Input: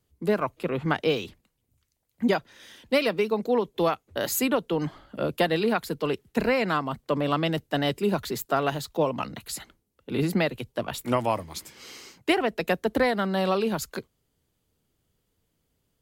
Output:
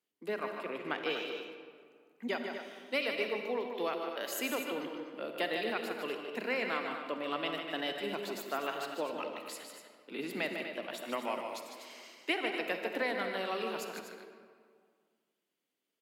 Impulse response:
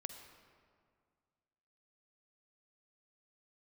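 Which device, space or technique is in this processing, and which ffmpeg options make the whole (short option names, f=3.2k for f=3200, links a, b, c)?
stadium PA: -filter_complex "[0:a]highpass=f=240:w=0.5412,highpass=f=240:w=1.3066,equalizer=f=2.4k:t=o:w=1.2:g=7.5,aecho=1:1:151.6|244.9:0.447|0.316[a];[1:a]atrim=start_sample=2205[b];[a][b]afir=irnorm=-1:irlink=0,volume=-9dB"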